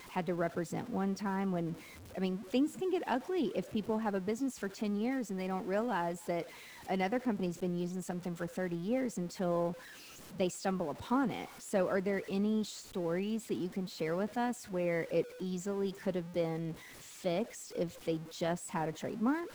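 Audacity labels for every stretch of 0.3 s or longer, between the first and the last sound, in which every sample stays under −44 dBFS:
1.740000	2.150000	silence
6.430000	6.890000	silence
9.740000	10.340000	silence
16.740000	17.240000	silence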